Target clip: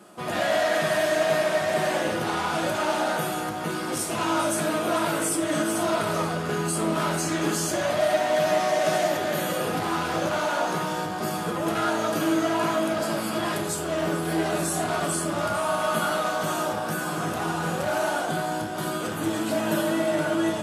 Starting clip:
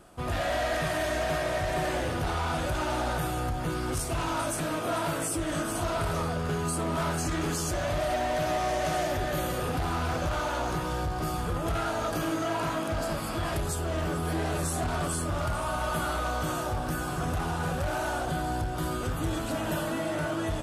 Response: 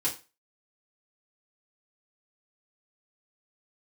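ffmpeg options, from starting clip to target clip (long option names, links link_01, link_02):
-filter_complex "[0:a]highpass=frequency=160:width=0.5412,highpass=frequency=160:width=1.3066,asplit=2[link_01][link_02];[1:a]atrim=start_sample=2205,asetrate=29547,aresample=44100,lowshelf=frequency=89:gain=10.5[link_03];[link_02][link_03]afir=irnorm=-1:irlink=0,volume=-9.5dB[link_04];[link_01][link_04]amix=inputs=2:normalize=0,volume=1dB"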